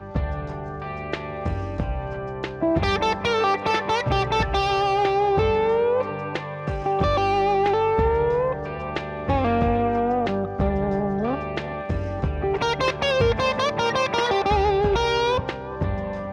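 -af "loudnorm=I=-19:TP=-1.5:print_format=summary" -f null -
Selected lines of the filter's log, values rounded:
Input Integrated:    -23.1 LUFS
Input True Peak:     -11.2 dBTP
Input LRA:             2.4 LU
Input Threshold:     -33.1 LUFS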